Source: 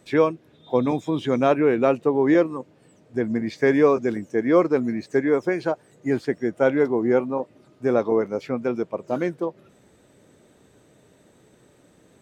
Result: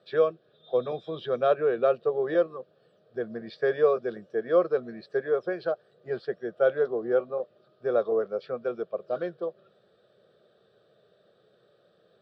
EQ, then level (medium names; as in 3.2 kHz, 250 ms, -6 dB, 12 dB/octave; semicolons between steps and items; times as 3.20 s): cabinet simulation 220–5200 Hz, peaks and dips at 800 Hz -3 dB, 1.5 kHz -3 dB, 2.7 kHz -9 dB; static phaser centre 1.4 kHz, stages 8; -1.5 dB